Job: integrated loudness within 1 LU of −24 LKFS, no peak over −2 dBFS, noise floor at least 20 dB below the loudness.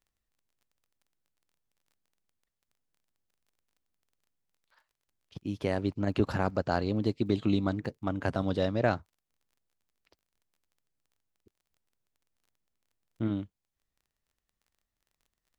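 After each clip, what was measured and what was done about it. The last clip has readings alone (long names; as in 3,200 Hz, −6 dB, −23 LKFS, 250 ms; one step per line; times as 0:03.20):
crackle rate 16 per second; integrated loudness −31.0 LKFS; sample peak −11.0 dBFS; target loudness −24.0 LKFS
→ click removal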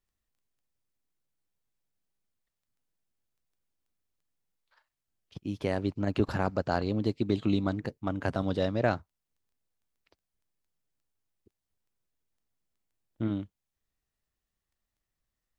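crackle rate 0 per second; integrated loudness −31.0 LKFS; sample peak −11.0 dBFS; target loudness −24.0 LKFS
→ level +7 dB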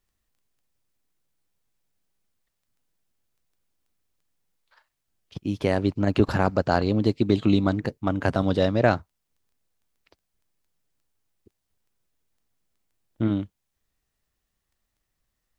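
integrated loudness −24.0 LKFS; sample peak −4.0 dBFS; background noise floor −80 dBFS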